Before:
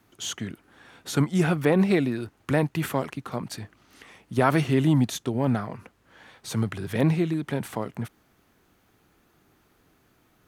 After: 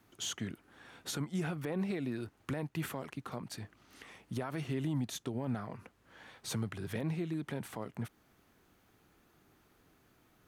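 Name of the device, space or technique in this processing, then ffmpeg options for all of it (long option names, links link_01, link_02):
stacked limiters: -af "alimiter=limit=-11.5dB:level=0:latency=1:release=433,alimiter=limit=-16dB:level=0:latency=1:release=59,alimiter=limit=-23dB:level=0:latency=1:release=499,volume=-4dB"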